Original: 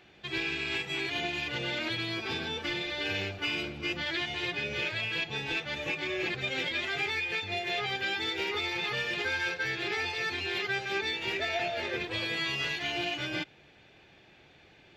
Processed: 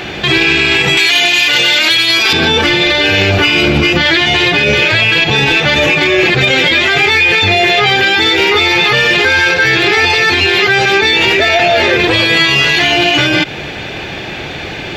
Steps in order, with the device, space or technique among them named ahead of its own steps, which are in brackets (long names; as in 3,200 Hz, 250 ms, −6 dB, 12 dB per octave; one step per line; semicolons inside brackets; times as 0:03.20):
0:00.97–0:02.33: spectral tilt +4 dB per octave
loud club master (downward compressor 2.5 to 1, threshold −35 dBFS, peak gain reduction 7.5 dB; hard clipping −27 dBFS, distortion −33 dB; boost into a limiter +36 dB)
level −1 dB